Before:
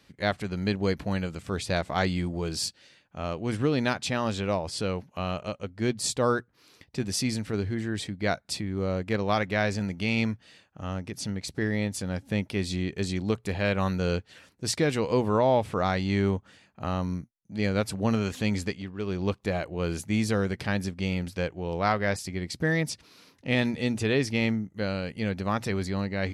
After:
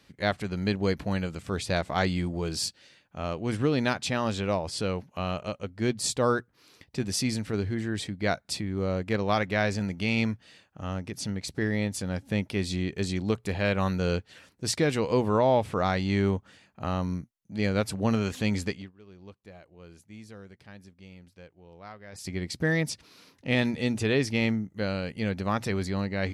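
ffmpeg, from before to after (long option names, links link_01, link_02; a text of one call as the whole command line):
ffmpeg -i in.wav -filter_complex "[0:a]asplit=3[link_01][link_02][link_03];[link_01]atrim=end=18.92,asetpts=PTS-STARTPTS,afade=type=out:start_time=18.76:duration=0.16:silence=0.1[link_04];[link_02]atrim=start=18.92:end=22.12,asetpts=PTS-STARTPTS,volume=-20dB[link_05];[link_03]atrim=start=22.12,asetpts=PTS-STARTPTS,afade=type=in:duration=0.16:silence=0.1[link_06];[link_04][link_05][link_06]concat=n=3:v=0:a=1" out.wav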